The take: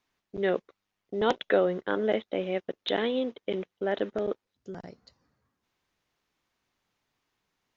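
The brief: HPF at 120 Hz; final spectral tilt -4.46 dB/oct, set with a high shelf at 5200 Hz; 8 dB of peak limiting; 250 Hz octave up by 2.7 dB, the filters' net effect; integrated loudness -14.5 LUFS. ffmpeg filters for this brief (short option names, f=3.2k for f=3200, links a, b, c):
-af "highpass=120,equalizer=f=250:t=o:g=4,highshelf=f=5.2k:g=-7.5,volume=17dB,alimiter=limit=-1.5dB:level=0:latency=1"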